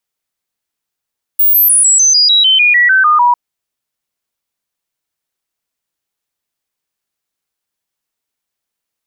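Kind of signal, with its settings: stepped sine 15.5 kHz down, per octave 3, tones 13, 0.15 s, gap 0.00 s -5.5 dBFS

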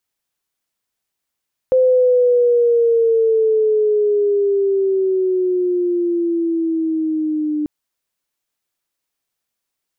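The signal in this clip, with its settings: gliding synth tone sine, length 5.94 s, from 517 Hz, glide -9.5 st, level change -7.5 dB, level -9.5 dB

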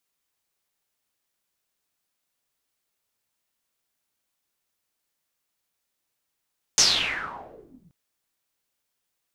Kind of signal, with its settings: swept filtered noise white, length 1.13 s lowpass, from 6.4 kHz, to 150 Hz, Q 6.5, exponential, gain ramp -28 dB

